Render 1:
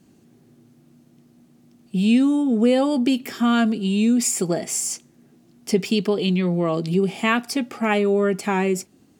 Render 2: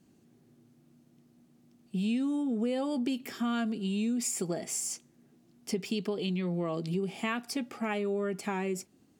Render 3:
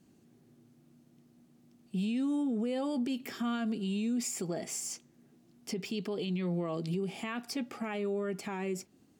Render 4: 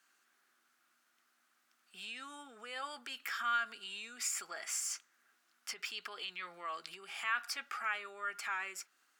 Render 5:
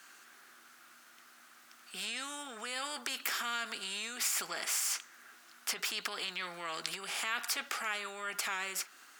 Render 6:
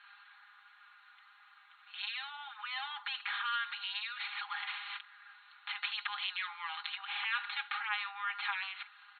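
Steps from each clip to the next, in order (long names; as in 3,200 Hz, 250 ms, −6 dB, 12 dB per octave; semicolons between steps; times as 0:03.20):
downward compressor 3 to 1, threshold −20 dBFS, peak gain reduction 6 dB; level −8.5 dB
dynamic equaliser 9,800 Hz, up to −6 dB, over −53 dBFS, Q 1.1; brickwall limiter −26 dBFS, peak gain reduction 7 dB
high-pass with resonance 1,400 Hz, resonance Q 3.9
every bin compressed towards the loudest bin 2 to 1; level +7.5 dB
brick-wall band-pass 770–4,300 Hz; comb filter 4.9 ms, depth 93%; level −2 dB; Opus 48 kbit/s 48,000 Hz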